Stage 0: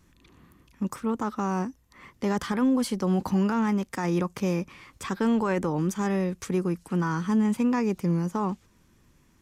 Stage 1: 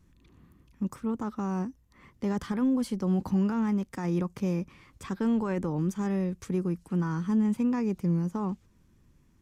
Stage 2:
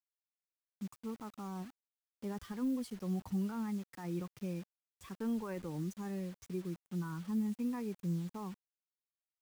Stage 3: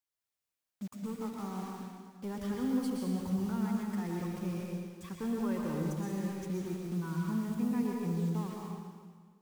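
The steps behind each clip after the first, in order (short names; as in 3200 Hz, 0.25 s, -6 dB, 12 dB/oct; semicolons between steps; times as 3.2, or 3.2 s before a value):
low shelf 330 Hz +9.5 dB; gain -8.5 dB
per-bin expansion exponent 1.5; bit-crush 8-bit; gain -8 dB
in parallel at -5 dB: hard clip -39 dBFS, distortion -8 dB; on the sum: reverb RT60 1.7 s, pre-delay 0.108 s, DRR -1.5 dB; gain -1.5 dB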